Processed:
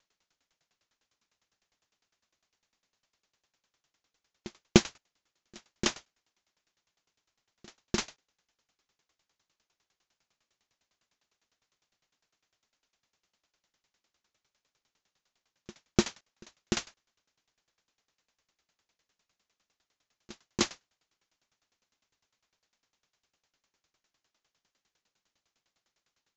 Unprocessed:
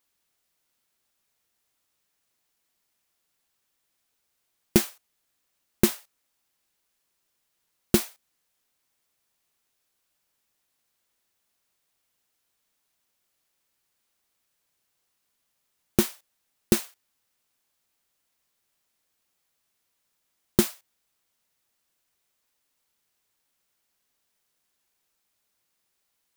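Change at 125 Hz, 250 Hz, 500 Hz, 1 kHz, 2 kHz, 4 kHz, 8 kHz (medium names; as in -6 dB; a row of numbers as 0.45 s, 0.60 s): -4.0 dB, -5.0 dB, -5.0 dB, 0.0 dB, -0.5 dB, 0.0 dB, -5.0 dB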